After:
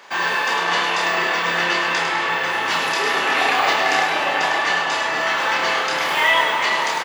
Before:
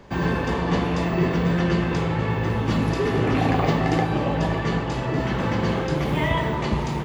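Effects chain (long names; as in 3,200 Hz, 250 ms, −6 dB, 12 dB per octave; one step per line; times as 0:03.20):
high-pass filter 1,100 Hz 12 dB per octave
in parallel at −11 dB: hard clipping −27 dBFS, distortion −16 dB
on the sum: double-tracking delay 29 ms −4 dB
echo with a time of its own for lows and highs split 2,800 Hz, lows 420 ms, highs 103 ms, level −6.5 dB
level +8.5 dB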